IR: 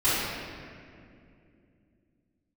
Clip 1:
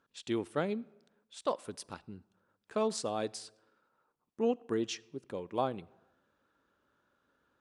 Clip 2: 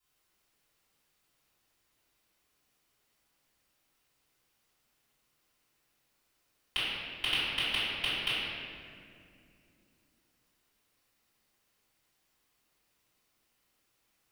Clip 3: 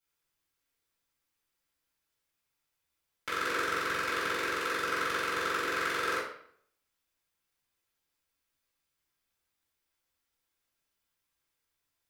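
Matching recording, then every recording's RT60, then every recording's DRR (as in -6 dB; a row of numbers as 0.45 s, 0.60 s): 2; no single decay rate, 2.5 s, 0.60 s; 21.0 dB, -15.0 dB, -11.0 dB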